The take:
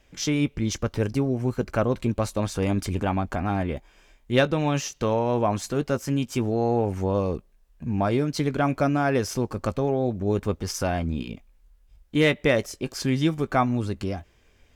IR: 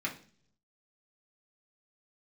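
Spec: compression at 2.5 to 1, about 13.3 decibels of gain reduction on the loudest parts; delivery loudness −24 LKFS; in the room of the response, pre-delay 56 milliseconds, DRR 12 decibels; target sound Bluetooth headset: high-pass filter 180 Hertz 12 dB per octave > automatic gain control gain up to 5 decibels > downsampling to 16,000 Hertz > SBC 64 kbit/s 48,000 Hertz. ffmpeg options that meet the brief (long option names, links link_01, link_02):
-filter_complex "[0:a]acompressor=threshold=-36dB:ratio=2.5,asplit=2[link_01][link_02];[1:a]atrim=start_sample=2205,adelay=56[link_03];[link_02][link_03]afir=irnorm=-1:irlink=0,volume=-16.5dB[link_04];[link_01][link_04]amix=inputs=2:normalize=0,highpass=180,dynaudnorm=maxgain=5dB,aresample=16000,aresample=44100,volume=13dB" -ar 48000 -c:a sbc -b:a 64k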